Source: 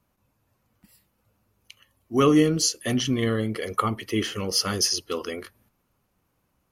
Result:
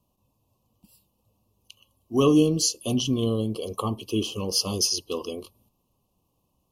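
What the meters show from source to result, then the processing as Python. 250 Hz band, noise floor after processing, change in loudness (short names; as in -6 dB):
0.0 dB, -74 dBFS, -1.0 dB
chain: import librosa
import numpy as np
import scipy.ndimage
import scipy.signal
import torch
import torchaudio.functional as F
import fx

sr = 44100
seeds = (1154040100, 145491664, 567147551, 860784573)

y = scipy.signal.sosfilt(scipy.signal.ellip(3, 1.0, 40, [1100.0, 2700.0], 'bandstop', fs=sr, output='sos'), x)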